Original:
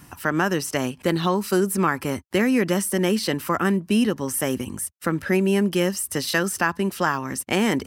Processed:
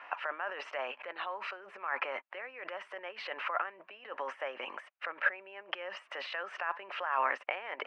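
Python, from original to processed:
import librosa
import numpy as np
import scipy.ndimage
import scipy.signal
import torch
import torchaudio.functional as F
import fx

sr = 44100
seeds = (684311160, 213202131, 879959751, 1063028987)

y = fx.over_compress(x, sr, threshold_db=-30.0, ratio=-1.0)
y = scipy.signal.sosfilt(scipy.signal.ellip(3, 1.0, 70, [580.0, 2600.0], 'bandpass', fs=sr, output='sos'), y)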